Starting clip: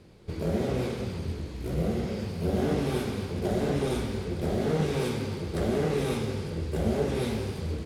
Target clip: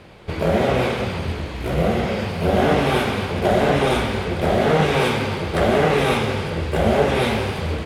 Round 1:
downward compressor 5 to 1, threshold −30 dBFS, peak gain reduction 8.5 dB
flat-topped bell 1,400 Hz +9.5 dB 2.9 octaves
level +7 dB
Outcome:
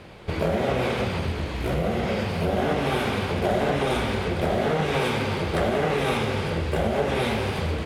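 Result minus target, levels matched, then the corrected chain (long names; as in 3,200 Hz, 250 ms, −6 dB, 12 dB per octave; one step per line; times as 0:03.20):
downward compressor: peak gain reduction +8.5 dB
flat-topped bell 1,400 Hz +9.5 dB 2.9 octaves
level +7 dB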